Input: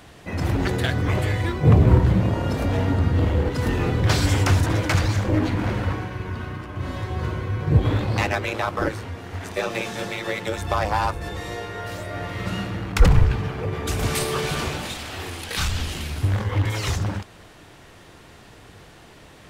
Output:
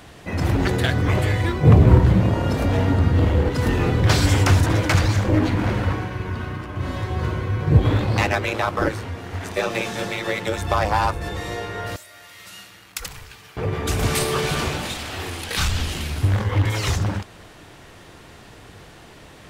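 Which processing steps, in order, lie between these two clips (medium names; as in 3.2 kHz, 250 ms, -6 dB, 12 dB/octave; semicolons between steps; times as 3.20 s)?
11.96–13.57 s: pre-emphasis filter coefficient 0.97; trim +2.5 dB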